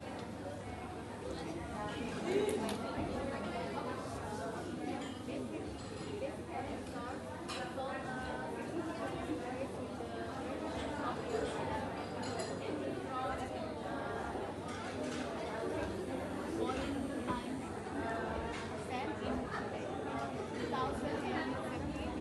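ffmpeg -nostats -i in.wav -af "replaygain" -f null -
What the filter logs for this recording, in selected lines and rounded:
track_gain = +22.3 dB
track_peak = 0.068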